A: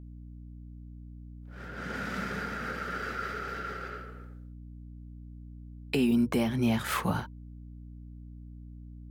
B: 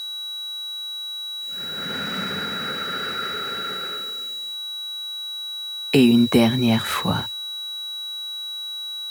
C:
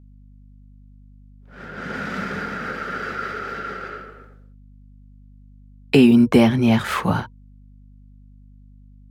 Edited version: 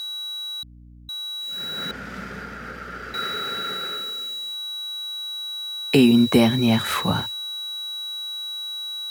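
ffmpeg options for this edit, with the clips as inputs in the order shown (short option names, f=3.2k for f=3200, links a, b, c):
-filter_complex "[0:a]asplit=2[a][b];[1:a]asplit=3[c][d][e];[c]atrim=end=0.632[f];[a]atrim=start=0.628:end=1.092[g];[d]atrim=start=1.088:end=1.912[h];[b]atrim=start=1.908:end=3.142[i];[e]atrim=start=3.138[j];[f][g]acrossfade=d=0.004:c1=hsin:c2=hsin[k];[k][h]acrossfade=d=0.004:c1=hsin:c2=hsin[l];[l][i]acrossfade=d=0.004:c1=hsin:c2=hsin[m];[m][j]acrossfade=d=0.004:c1=hsin:c2=hsin"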